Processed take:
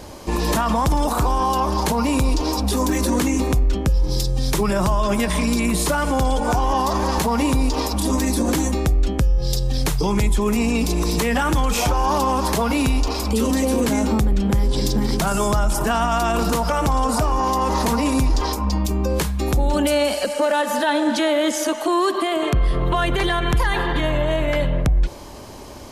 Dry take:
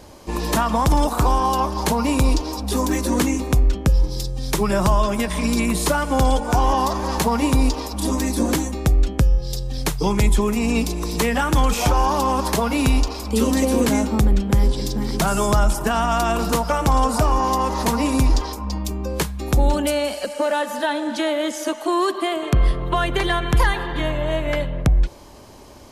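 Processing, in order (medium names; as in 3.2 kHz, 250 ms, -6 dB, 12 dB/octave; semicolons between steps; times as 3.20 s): peak limiter -17.5 dBFS, peak gain reduction 10 dB; trim +6 dB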